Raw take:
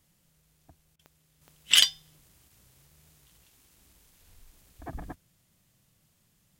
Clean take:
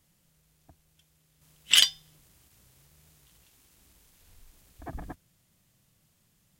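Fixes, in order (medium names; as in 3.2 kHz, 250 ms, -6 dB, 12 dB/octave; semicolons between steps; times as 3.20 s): de-click; interpolate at 0.96 s, 32 ms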